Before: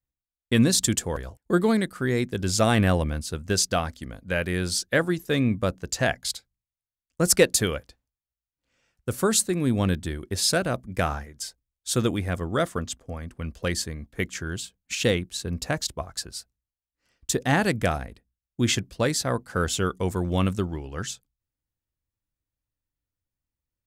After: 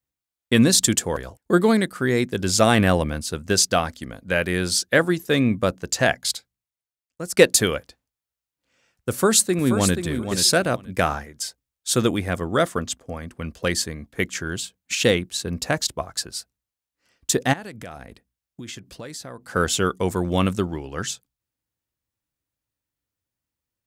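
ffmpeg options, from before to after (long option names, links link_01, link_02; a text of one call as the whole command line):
ffmpeg -i in.wav -filter_complex "[0:a]asplit=2[link_01][link_02];[link_02]afade=type=in:start_time=9.1:duration=0.01,afade=type=out:start_time=9.95:duration=0.01,aecho=0:1:480|960:0.398107|0.0597161[link_03];[link_01][link_03]amix=inputs=2:normalize=0,asplit=3[link_04][link_05][link_06];[link_04]afade=type=out:start_time=17.52:duration=0.02[link_07];[link_05]acompressor=threshold=-37dB:ratio=8:attack=3.2:release=140:knee=1:detection=peak,afade=type=in:start_time=17.52:duration=0.02,afade=type=out:start_time=19.54:duration=0.02[link_08];[link_06]afade=type=in:start_time=19.54:duration=0.02[link_09];[link_07][link_08][link_09]amix=inputs=3:normalize=0,asplit=2[link_10][link_11];[link_10]atrim=end=7.37,asetpts=PTS-STARTPTS,afade=type=out:start_time=6.34:duration=1.03:silence=0.112202[link_12];[link_11]atrim=start=7.37,asetpts=PTS-STARTPTS,afade=type=in:duration=0.004:curve=hsin:silence=0.112202[link_13];[link_12][link_13]concat=n=2:v=0:a=1,highpass=frequency=150:poles=1,volume=5dB" out.wav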